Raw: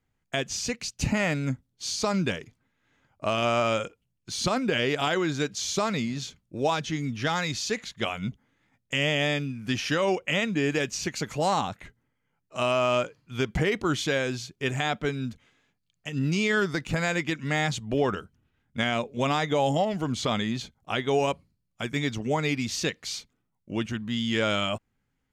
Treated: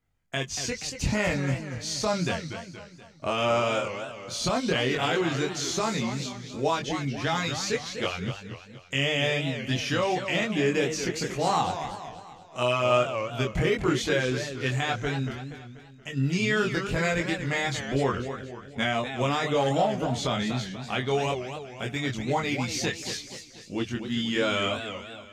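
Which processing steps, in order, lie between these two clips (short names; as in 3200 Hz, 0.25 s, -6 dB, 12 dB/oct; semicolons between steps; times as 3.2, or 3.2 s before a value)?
chorus voices 4, 0.11 Hz, delay 23 ms, depth 1.5 ms; warbling echo 0.239 s, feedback 48%, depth 208 cents, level -9 dB; gain +2.5 dB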